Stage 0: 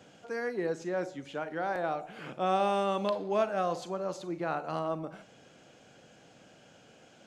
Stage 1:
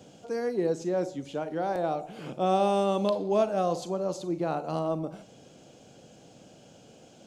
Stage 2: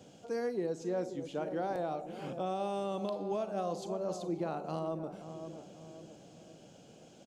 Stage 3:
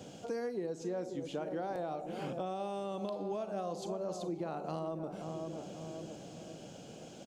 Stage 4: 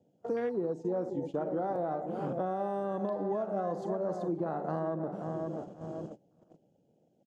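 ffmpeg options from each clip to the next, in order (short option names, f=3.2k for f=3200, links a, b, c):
-af "equalizer=f=1.7k:w=0.89:g=-12.5,volume=6.5dB"
-filter_complex "[0:a]asplit=2[a][b];[b]adelay=534,lowpass=f=860:p=1,volume=-10.5dB,asplit=2[c][d];[d]adelay=534,lowpass=f=860:p=1,volume=0.52,asplit=2[e][f];[f]adelay=534,lowpass=f=860:p=1,volume=0.52,asplit=2[g][h];[h]adelay=534,lowpass=f=860:p=1,volume=0.52,asplit=2[i][j];[j]adelay=534,lowpass=f=860:p=1,volume=0.52,asplit=2[k][l];[l]adelay=534,lowpass=f=860:p=1,volume=0.52[m];[a][c][e][g][i][k][m]amix=inputs=7:normalize=0,alimiter=limit=-21.5dB:level=0:latency=1:release=405,volume=-4dB"
-af "acompressor=threshold=-44dB:ratio=3,volume=6.5dB"
-af "afwtdn=0.00398,agate=range=-24dB:threshold=-44dB:ratio=16:detection=peak,volume=5dB"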